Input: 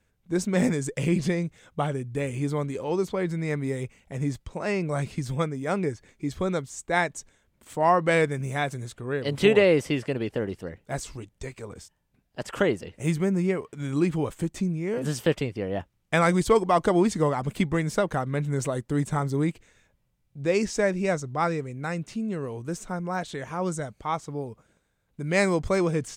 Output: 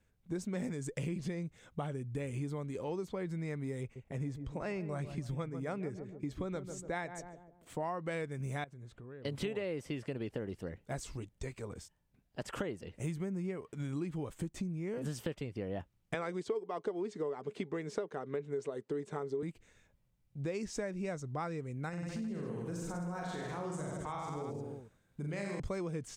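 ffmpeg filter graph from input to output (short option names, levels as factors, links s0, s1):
-filter_complex "[0:a]asettb=1/sr,asplit=3[s0][s1][s2];[s0]atrim=end=3.814[s3];[s1]atrim=start=3.81:end=7.82,asetpts=PTS-STARTPTS,afade=t=in:d=0.004:c=qsin,afade=t=out:st=4.006:d=0.004:c=qsin,agate=range=0.501:threshold=0.00178:ratio=16:release=100:detection=peak,bass=f=250:g=-1,treble=f=4000:g=-4,asplit=2[s4][s5];[s5]adelay=145,lowpass=f=920:p=1,volume=0.282,asplit=2[s6][s7];[s7]adelay=145,lowpass=f=920:p=1,volume=0.48,asplit=2[s8][s9];[s9]adelay=145,lowpass=f=920:p=1,volume=0.48,asplit=2[s10][s11];[s11]adelay=145,lowpass=f=920:p=1,volume=0.48,asplit=2[s12][s13];[s13]adelay=145,lowpass=f=920:p=1,volume=0.48[s14];[s4][s6][s8][s10][s12][s14]amix=inputs=6:normalize=0,atrim=end_sample=176841[s15];[s2]atrim=start=7.816[s16];[s3][s15]acrossfade=d=0.004:c1=hsin:c2=qsin[s17];[s17][s16]acrossfade=d=0.004:c1=qsin:c2=hsin,asettb=1/sr,asplit=3[s18][s19][s20];[s18]atrim=end=8.644[s21];[s19]atrim=start=8.64:end=9.25,asetpts=PTS-STARTPTS,afade=t=in:d=0.004:c=qsin,afade=t=out:st=0.606:d=0.004:c=qsin,lowpass=f=2000:p=1,acompressor=threshold=0.00447:ratio=3:attack=3.2:release=140:knee=1:detection=peak[s22];[s20]atrim=start=9.246[s23];[s21][s22]acrossfade=d=0.004:c1=hsin:c2=qsin[s24];[s24][s23]acrossfade=d=0.004:c1=qsin:c2=hsin,asettb=1/sr,asplit=3[s25][s26][s27];[s25]atrim=end=16.144[s28];[s26]atrim=start=16.14:end=19.43,asetpts=PTS-STARTPTS,afade=t=in:d=0.004:c=qsin,afade=t=out:st=3.286:d=0.004:c=qsin,highpass=240,lowpass=5800,equalizer=f=420:w=5.7:g=14.5[s29];[s27]atrim=start=19.426[s30];[s28][s29]acrossfade=d=0.004:c1=hsin:c2=qsin[s31];[s31][s30]acrossfade=d=0.004:c1=qsin:c2=hsin,asettb=1/sr,asplit=3[s32][s33][s34];[s32]atrim=end=21.894[s35];[s33]atrim=start=21.89:end=25.6,asetpts=PTS-STARTPTS,afade=t=in:d=0.004:c=qsin,afade=t=out:st=3.706:d=0.004:c=qsin,aecho=1:1:40|86|138.9|199.7|269.7|350.1:0.794|0.631|0.501|0.398|0.316|0.251,atrim=end_sample=163611,acompressor=threshold=0.0224:ratio=2.5:attack=3.2:release=140:knee=1:detection=peak[s36];[s34]atrim=start=25.596[s37];[s35][s36]acrossfade=d=0.004:c1=hsin:c2=qsin[s38];[s38][s37]acrossfade=d=0.004:c1=qsin:c2=hsin,lowshelf=f=370:g=3.5,acompressor=threshold=0.0355:ratio=6,volume=0.501"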